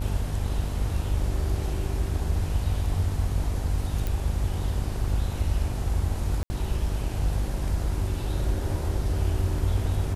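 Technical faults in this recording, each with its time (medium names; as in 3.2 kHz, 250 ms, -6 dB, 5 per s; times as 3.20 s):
buzz 50 Hz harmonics 22 -30 dBFS
4.07 s: pop
6.43–6.50 s: dropout 70 ms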